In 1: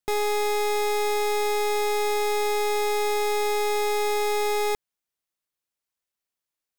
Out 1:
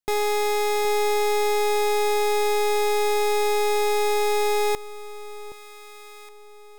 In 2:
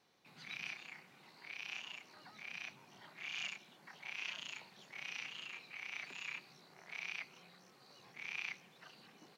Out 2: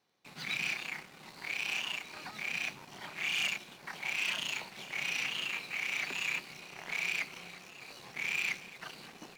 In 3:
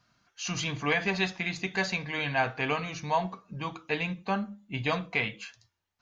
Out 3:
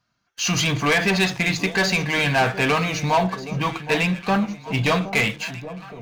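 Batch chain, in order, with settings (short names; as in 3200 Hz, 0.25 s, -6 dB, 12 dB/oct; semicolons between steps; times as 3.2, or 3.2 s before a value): sample leveller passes 3; echo with dull and thin repeats by turns 0.769 s, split 900 Hz, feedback 59%, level -12.5 dB; gain +1.5 dB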